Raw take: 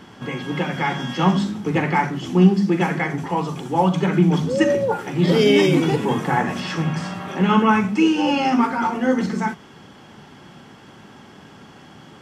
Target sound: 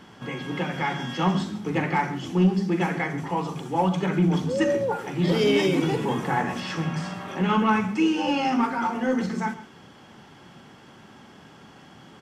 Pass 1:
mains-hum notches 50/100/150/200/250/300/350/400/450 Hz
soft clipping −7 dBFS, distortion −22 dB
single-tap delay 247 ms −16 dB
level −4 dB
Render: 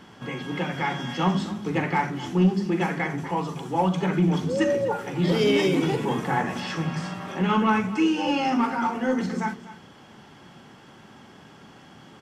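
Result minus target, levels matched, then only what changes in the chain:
echo 111 ms late
change: single-tap delay 136 ms −16 dB

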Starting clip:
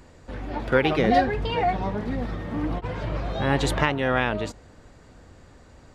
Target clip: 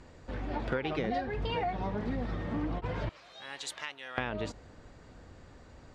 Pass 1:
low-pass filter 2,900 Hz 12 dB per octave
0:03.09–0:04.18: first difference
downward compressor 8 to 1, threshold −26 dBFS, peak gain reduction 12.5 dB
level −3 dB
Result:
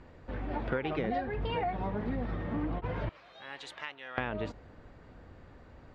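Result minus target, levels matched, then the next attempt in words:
8,000 Hz band −13.5 dB
low-pass filter 6,900 Hz 12 dB per octave
0:03.09–0:04.18: first difference
downward compressor 8 to 1, threshold −26 dBFS, peak gain reduction 12.5 dB
level −3 dB

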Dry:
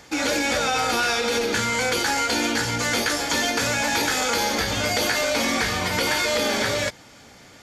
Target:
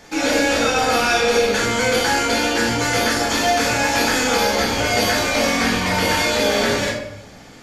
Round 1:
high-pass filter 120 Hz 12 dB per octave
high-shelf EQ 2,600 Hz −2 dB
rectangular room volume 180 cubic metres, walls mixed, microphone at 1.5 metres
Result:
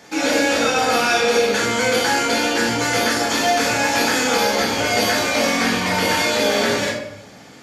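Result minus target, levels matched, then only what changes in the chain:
125 Hz band −3.0 dB
remove: high-pass filter 120 Hz 12 dB per octave

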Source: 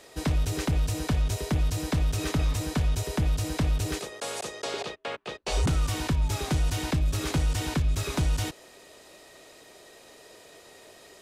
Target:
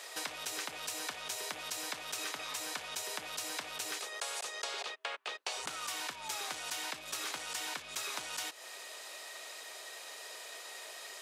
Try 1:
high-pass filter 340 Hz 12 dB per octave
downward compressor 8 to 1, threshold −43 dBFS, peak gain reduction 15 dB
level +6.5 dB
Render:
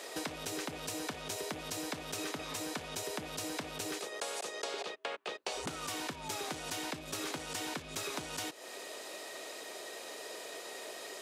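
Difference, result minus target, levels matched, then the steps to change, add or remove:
250 Hz band +12.5 dB
change: high-pass filter 880 Hz 12 dB per octave

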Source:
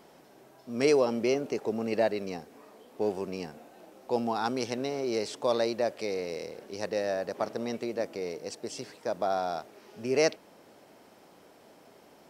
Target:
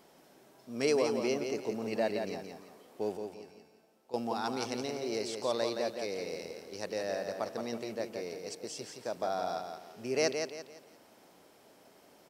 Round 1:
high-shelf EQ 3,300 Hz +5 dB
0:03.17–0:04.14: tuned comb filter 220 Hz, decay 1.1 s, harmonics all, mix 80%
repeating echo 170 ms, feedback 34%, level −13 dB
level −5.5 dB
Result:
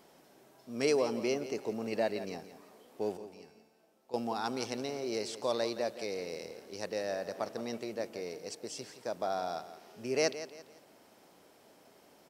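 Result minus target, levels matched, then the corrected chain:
echo-to-direct −7 dB
high-shelf EQ 3,300 Hz +5 dB
0:03.17–0:04.14: tuned comb filter 220 Hz, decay 1.1 s, harmonics all, mix 80%
repeating echo 170 ms, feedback 34%, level −6 dB
level −5.5 dB

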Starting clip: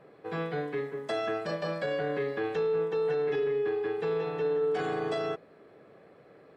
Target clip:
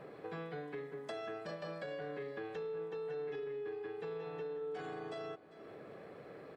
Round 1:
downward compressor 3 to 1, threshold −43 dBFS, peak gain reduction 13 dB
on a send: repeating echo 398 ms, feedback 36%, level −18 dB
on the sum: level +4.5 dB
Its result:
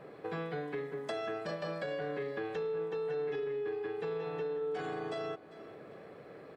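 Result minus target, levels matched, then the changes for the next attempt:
downward compressor: peak gain reduction −5.5 dB
change: downward compressor 3 to 1, threshold −51.5 dBFS, peak gain reduction 18.5 dB

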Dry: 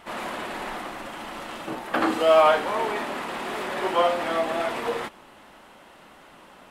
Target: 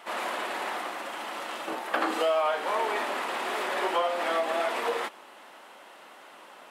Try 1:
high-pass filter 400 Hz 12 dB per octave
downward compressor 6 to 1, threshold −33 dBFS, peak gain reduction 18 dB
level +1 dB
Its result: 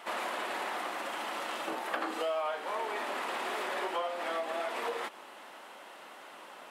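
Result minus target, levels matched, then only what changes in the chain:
downward compressor: peak gain reduction +7.5 dB
change: downward compressor 6 to 1, threshold −24 dBFS, peak gain reduction 10.5 dB

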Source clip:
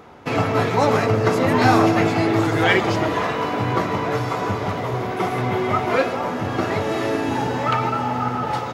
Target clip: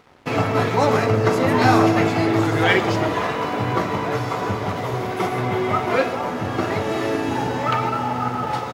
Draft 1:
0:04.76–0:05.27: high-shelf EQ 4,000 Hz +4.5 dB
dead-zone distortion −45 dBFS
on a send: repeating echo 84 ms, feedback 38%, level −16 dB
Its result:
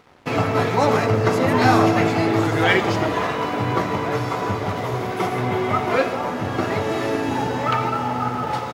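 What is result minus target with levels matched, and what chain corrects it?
echo 38 ms late
0:04.76–0:05.27: high-shelf EQ 4,000 Hz +4.5 dB
dead-zone distortion −45 dBFS
on a send: repeating echo 46 ms, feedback 38%, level −16 dB

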